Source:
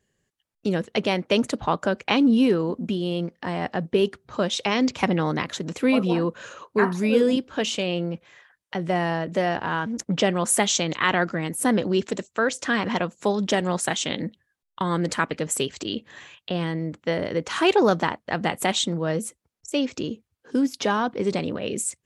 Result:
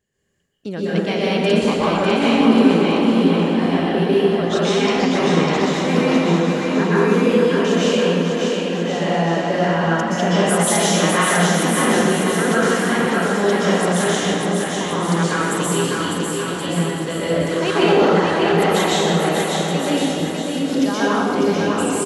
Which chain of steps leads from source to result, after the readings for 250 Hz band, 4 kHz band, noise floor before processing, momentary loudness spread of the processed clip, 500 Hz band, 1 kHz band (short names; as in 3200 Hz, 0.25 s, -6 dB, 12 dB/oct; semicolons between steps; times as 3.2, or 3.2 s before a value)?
+7.0 dB, +5.5 dB, -80 dBFS, 6 LU, +7.5 dB, +7.0 dB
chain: on a send: bouncing-ball echo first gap 0.6 s, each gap 0.8×, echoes 5; on the sum: plate-style reverb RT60 1.8 s, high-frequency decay 0.75×, pre-delay 0.11 s, DRR -8.5 dB; gain -4.5 dB